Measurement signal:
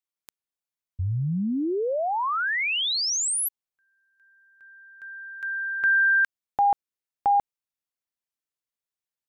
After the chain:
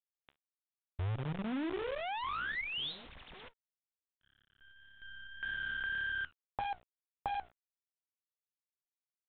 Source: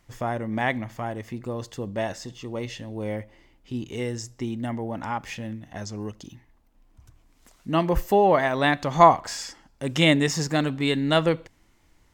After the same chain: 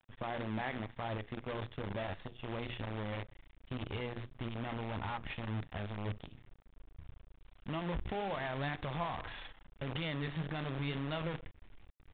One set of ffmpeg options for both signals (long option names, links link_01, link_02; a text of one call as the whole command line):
ffmpeg -i in.wav -af "bandreject=frequency=60:width_type=h:width=6,bandreject=frequency=120:width_type=h:width=6,bandreject=frequency=180:width_type=h:width=6,bandreject=frequency=240:width_type=h:width=6,bandreject=frequency=300:width_type=h:width=6,bandreject=frequency=360:width_type=h:width=6,bandreject=frequency=420:width_type=h:width=6,asubboost=boost=5.5:cutoff=110,acompressor=threshold=-33dB:ratio=6:attack=13:release=47:knee=1:detection=peak,flanger=delay=8.9:depth=6:regen=69:speed=1.8:shape=triangular,acrusher=bits=7:dc=4:mix=0:aa=0.000001,aresample=8000,aresample=44100,volume=-1.5dB" out.wav